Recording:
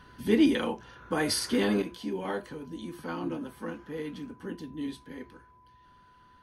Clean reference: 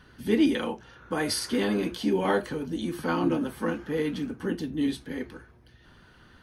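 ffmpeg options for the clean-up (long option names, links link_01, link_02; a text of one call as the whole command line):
ffmpeg -i in.wav -af "bandreject=frequency=1000:width=30,asetnsamples=nb_out_samples=441:pad=0,asendcmd='1.82 volume volume 8.5dB',volume=0dB" out.wav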